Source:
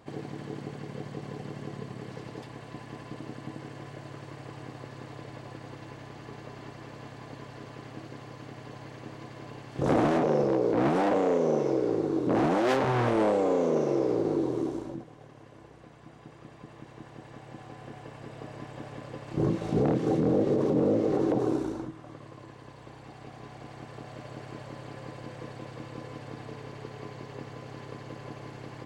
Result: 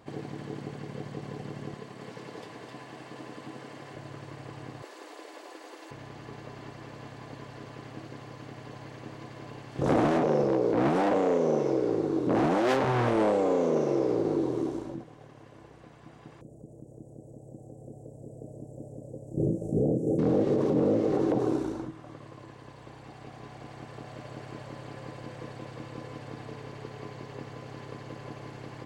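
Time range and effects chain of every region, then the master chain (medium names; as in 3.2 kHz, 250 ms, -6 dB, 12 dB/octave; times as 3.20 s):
1.74–3.95 s: high-pass 330 Hz 6 dB/octave + delay 260 ms -4 dB
4.82–5.91 s: elliptic high-pass 320 Hz, stop band 80 dB + treble shelf 5.8 kHz +10.5 dB
16.41–20.19 s: elliptic band-stop 580–7600 Hz + upward compressor, threshold -43 dBFS
whole clip: none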